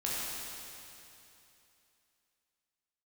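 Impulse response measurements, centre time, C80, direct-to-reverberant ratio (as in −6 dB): 186 ms, −2.0 dB, −7.5 dB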